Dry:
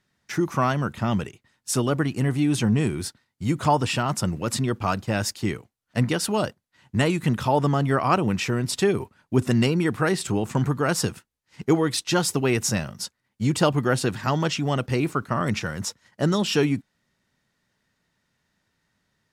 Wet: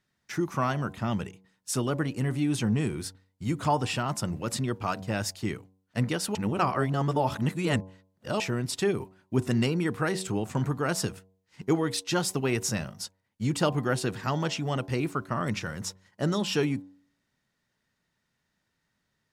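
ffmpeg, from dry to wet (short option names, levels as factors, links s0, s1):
-filter_complex "[0:a]asplit=3[s0][s1][s2];[s0]atrim=end=6.352[s3];[s1]atrim=start=6.348:end=8.402,asetpts=PTS-STARTPTS,areverse[s4];[s2]atrim=start=8.398[s5];[s3][s4]acrossfade=d=0.004:c1=hsin:c2=hsin[s6];[s6][s5]acrossfade=d=0.004:c1=hsin:c2=hsin,bandreject=f=94.4:t=h:w=4,bandreject=f=188.8:t=h:w=4,bandreject=f=283.2:t=h:w=4,bandreject=f=377.6:t=h:w=4,bandreject=f=472:t=h:w=4,bandreject=f=566.4:t=h:w=4,bandreject=f=660.8:t=h:w=4,bandreject=f=755.2:t=h:w=4,bandreject=f=849.6:t=h:w=4,bandreject=f=944:t=h:w=4,bandreject=f=1038.4:t=h:w=4,volume=0.562"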